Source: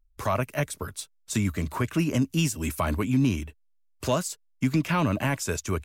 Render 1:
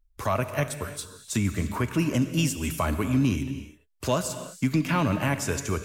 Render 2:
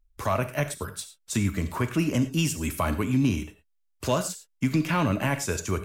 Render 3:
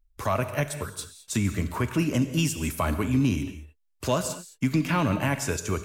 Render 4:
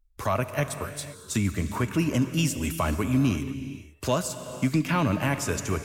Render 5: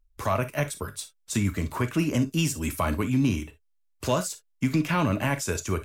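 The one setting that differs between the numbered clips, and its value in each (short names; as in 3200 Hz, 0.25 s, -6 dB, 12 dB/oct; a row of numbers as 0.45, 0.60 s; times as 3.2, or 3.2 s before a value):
non-linear reverb, gate: 360, 130, 240, 530, 80 ms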